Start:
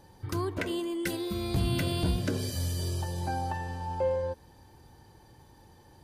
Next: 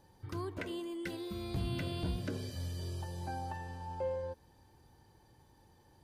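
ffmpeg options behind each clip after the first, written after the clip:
-filter_complex "[0:a]acrossover=split=4900[s0][s1];[s1]acompressor=threshold=0.00355:ratio=4:attack=1:release=60[s2];[s0][s2]amix=inputs=2:normalize=0,volume=0.398"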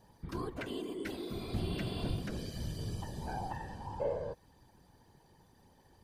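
-af "afftfilt=real='hypot(re,im)*cos(2*PI*random(0))':imag='hypot(re,im)*sin(2*PI*random(1))':win_size=512:overlap=0.75,volume=2.11"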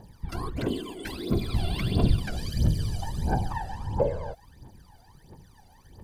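-af "aphaser=in_gain=1:out_gain=1:delay=1.5:decay=0.78:speed=1.5:type=triangular,volume=1.68"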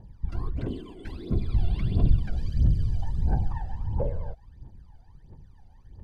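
-af "aemphasis=mode=reproduction:type=bsi,asoftclip=type=tanh:threshold=0.841,volume=0.376"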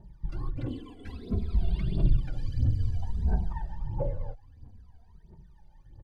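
-filter_complex "[0:a]asplit=2[s0][s1];[s1]adelay=2.8,afreqshift=-0.55[s2];[s0][s2]amix=inputs=2:normalize=1"

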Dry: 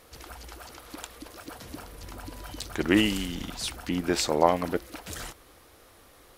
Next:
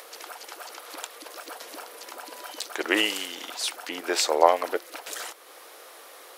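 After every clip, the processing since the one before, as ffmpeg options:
-filter_complex "[0:a]highpass=f=420:w=0.5412,highpass=f=420:w=1.3066,asplit=2[s0][s1];[s1]acompressor=mode=upward:threshold=0.0141:ratio=2.5,volume=0.944[s2];[s0][s2]amix=inputs=2:normalize=0,volume=0.794"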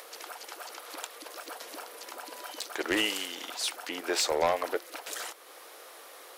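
-af "asoftclip=type=tanh:threshold=0.15,volume=0.794"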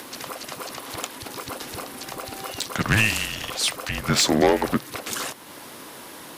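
-af "afreqshift=-210,volume=2.66"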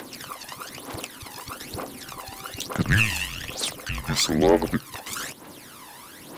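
-af "aphaser=in_gain=1:out_gain=1:delay=1.2:decay=0.64:speed=1.1:type=triangular,volume=0.562"

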